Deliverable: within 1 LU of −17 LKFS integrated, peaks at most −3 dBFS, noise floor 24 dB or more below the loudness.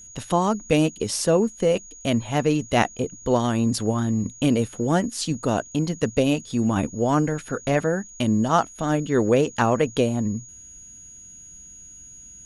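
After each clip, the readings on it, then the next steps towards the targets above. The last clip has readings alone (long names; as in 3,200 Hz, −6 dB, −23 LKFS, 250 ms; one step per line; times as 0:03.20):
interfering tone 6,700 Hz; level of the tone −42 dBFS; integrated loudness −23.0 LKFS; sample peak −5.0 dBFS; target loudness −17.0 LKFS
→ notch filter 6,700 Hz, Q 30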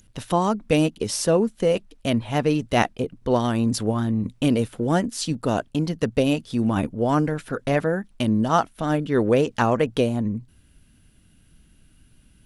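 interfering tone none found; integrated loudness −23.0 LKFS; sample peak −5.0 dBFS; target loudness −17.0 LKFS
→ level +6 dB
brickwall limiter −3 dBFS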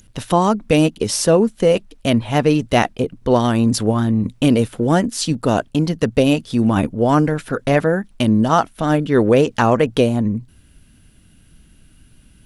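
integrated loudness −17.5 LKFS; sample peak −3.0 dBFS; background noise floor −51 dBFS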